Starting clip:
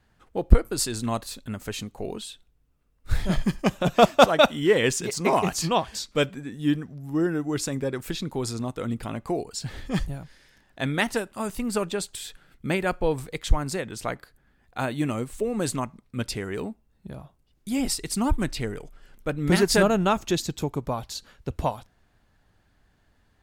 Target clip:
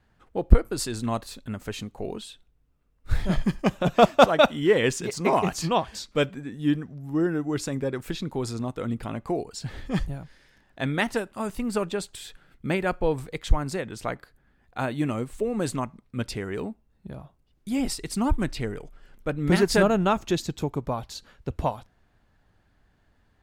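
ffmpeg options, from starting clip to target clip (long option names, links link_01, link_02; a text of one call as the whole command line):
ffmpeg -i in.wav -af "highshelf=frequency=4100:gain=-6.5" out.wav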